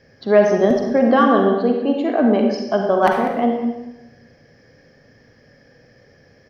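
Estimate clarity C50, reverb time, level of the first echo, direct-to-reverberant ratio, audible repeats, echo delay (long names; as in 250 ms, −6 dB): 2.5 dB, 0.95 s, −13.5 dB, 1.5 dB, 1, 195 ms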